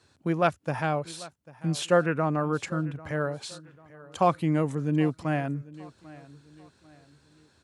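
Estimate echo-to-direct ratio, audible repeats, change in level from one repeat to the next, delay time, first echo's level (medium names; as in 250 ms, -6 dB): -19.5 dB, 2, -8.5 dB, 794 ms, -20.0 dB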